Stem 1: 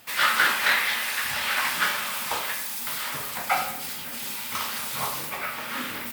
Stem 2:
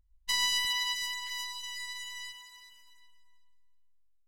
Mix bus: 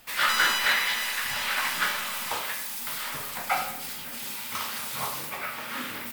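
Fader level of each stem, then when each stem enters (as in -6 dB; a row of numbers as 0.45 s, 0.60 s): -2.5 dB, -1.0 dB; 0.00 s, 0.00 s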